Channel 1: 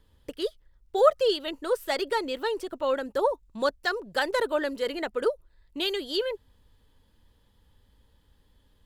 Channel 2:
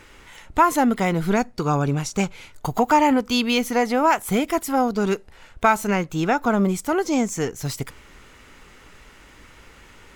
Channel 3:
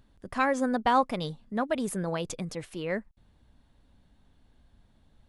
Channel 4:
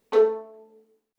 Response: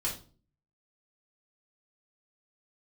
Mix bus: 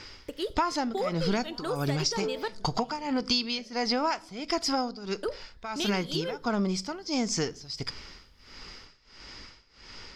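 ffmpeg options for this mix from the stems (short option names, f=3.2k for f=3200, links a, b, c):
-filter_complex "[0:a]acompressor=threshold=-27dB:ratio=6,volume=-1dB,asplit=3[a][b][c];[a]atrim=end=2.48,asetpts=PTS-STARTPTS,afade=t=out:st=2.476:d=0.004:c=hsin[d];[b]atrim=start=2.48:end=5.23,asetpts=PTS-STARTPTS,volume=0[e];[c]atrim=start=5.23,asetpts=PTS-STARTPTS,afade=t=in:d=0.004:c=hsin[f];[d][e][f]concat=n=3:v=0:a=1,asplit=2[g][h];[h]volume=-18dB[i];[1:a]lowpass=f=5k:t=q:w=12,tremolo=f=1.5:d=0.92,volume=-1dB,asplit=2[j][k];[k]volume=-21dB[l];[2:a]acompressor=threshold=-36dB:ratio=6,acrossover=split=900[m][n];[m]aeval=exprs='val(0)*(1-1/2+1/2*cos(2*PI*4.7*n/s))':c=same[o];[n]aeval=exprs='val(0)*(1-1/2-1/2*cos(2*PI*4.7*n/s))':c=same[p];[o][p]amix=inputs=2:normalize=0,adelay=650,volume=-11dB,asplit=2[q][r];[r]volume=-4dB[s];[3:a]adelay=2050,volume=-13dB[t];[4:a]atrim=start_sample=2205[u];[i][l][s]amix=inputs=3:normalize=0[v];[v][u]afir=irnorm=-1:irlink=0[w];[g][j][q][t][w]amix=inputs=5:normalize=0,acompressor=threshold=-24dB:ratio=6"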